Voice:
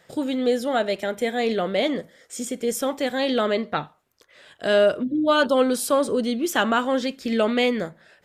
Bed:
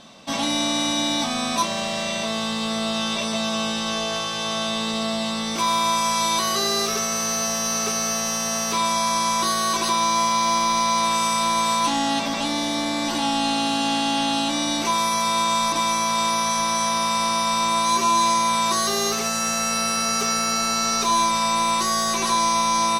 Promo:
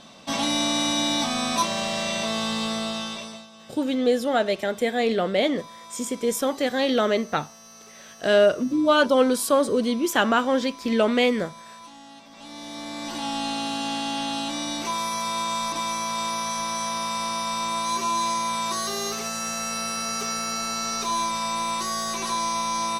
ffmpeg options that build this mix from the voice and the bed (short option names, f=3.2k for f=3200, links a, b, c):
-filter_complex "[0:a]adelay=3600,volume=0.5dB[a];[1:a]volume=16.5dB,afade=t=out:st=2.59:d=0.88:silence=0.0749894,afade=t=in:st=12.3:d=1.06:silence=0.133352[b];[a][b]amix=inputs=2:normalize=0"